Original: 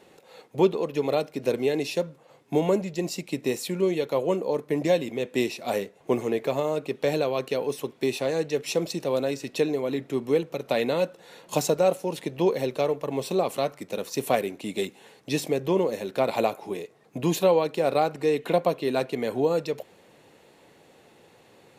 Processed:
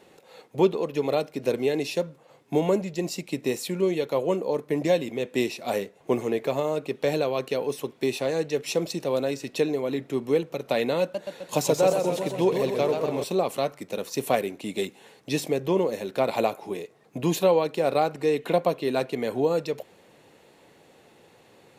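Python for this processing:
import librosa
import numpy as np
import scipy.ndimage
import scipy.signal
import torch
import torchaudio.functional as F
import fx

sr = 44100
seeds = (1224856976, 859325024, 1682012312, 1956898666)

y = fx.echo_warbled(x, sr, ms=130, feedback_pct=65, rate_hz=2.8, cents=147, wet_db=-6, at=(11.01, 13.24))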